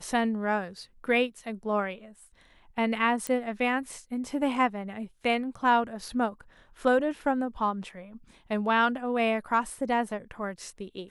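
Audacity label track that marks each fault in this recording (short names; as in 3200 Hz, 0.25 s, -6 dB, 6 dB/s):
3.270000	3.270000	pop -17 dBFS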